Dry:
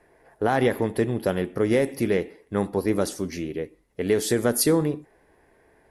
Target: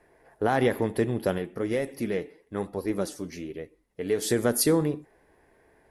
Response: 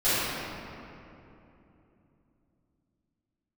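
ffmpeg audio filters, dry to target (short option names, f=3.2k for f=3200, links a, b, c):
-filter_complex "[0:a]asplit=3[a][b][c];[a]afade=t=out:st=1.37:d=0.02[d];[b]flanger=delay=1.5:depth=5.4:regen=56:speed=1.1:shape=sinusoidal,afade=t=in:st=1.37:d=0.02,afade=t=out:st=4.21:d=0.02[e];[c]afade=t=in:st=4.21:d=0.02[f];[d][e][f]amix=inputs=3:normalize=0,volume=-2dB"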